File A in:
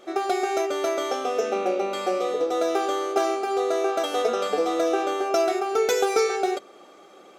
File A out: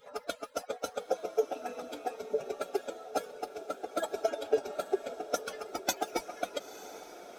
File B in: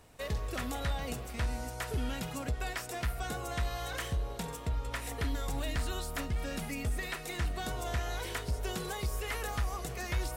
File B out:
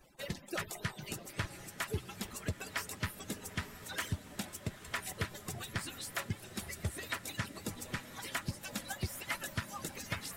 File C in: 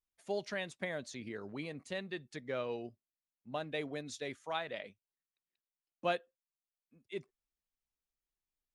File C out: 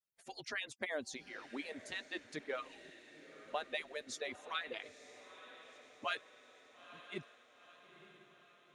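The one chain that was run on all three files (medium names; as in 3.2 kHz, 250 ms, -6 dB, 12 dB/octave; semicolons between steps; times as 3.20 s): harmonic-percussive separation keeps percussive; echo that smears into a reverb 932 ms, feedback 57%, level -14 dB; trim +1.5 dB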